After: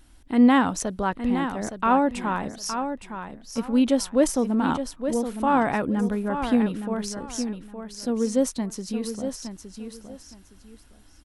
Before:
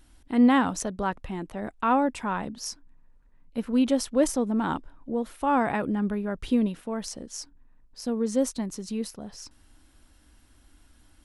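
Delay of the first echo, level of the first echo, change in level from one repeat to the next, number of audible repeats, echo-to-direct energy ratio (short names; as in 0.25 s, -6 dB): 0.865 s, -8.5 dB, -13.0 dB, 2, -8.5 dB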